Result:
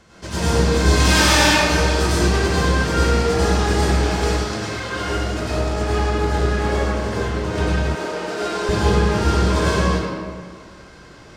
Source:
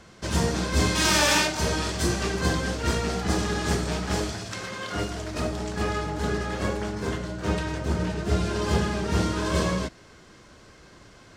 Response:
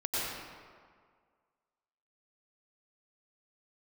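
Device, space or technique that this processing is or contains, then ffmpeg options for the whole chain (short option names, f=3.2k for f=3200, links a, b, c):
stairwell: -filter_complex "[1:a]atrim=start_sample=2205[a];[0:a][a]afir=irnorm=-1:irlink=0,asettb=1/sr,asplit=3[b][c][d];[b]atrim=end=7.954[e];[c]atrim=start=7.95:end=8.69,asetpts=PTS-STARTPTS,afade=t=in:d=0.004:c=qsin,afade=t=out:st=0.736:d=0.004:c=qsin,highpass=400[f];[d]atrim=start=8.686[g];[e][f]acrossfade=d=0.004:c1=hsin:c2=qsin[h];[h][g]acrossfade=d=0.004:c1=qsin:c2=hsin"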